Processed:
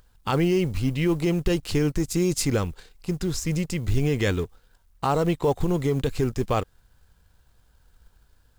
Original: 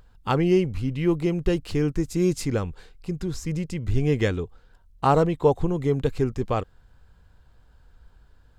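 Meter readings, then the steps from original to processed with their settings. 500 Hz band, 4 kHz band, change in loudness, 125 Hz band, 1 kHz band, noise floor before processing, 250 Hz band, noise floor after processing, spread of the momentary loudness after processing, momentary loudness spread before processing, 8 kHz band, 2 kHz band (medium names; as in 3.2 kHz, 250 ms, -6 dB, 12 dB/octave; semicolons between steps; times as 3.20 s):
-1.5 dB, +4.5 dB, -0.5 dB, 0.0 dB, -2.5 dB, -57 dBFS, 0.0 dB, -62 dBFS, 7 LU, 10 LU, +7.5 dB, +2.0 dB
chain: companding laws mixed up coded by A; treble shelf 3.1 kHz +8 dB; peak limiter -16 dBFS, peak gain reduction 9 dB; trim +3 dB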